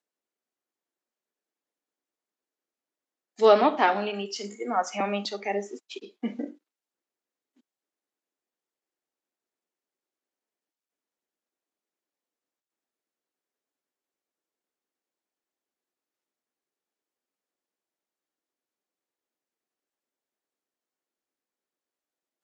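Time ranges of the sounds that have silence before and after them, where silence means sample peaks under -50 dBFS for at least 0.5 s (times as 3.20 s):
3.38–6.55 s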